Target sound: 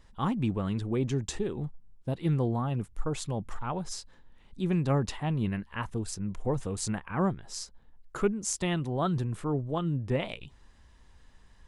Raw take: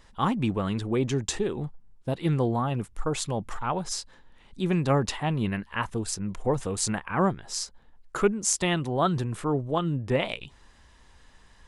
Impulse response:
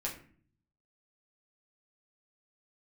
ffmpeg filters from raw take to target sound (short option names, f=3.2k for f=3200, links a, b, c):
-af "lowshelf=f=300:g=7,volume=-7dB"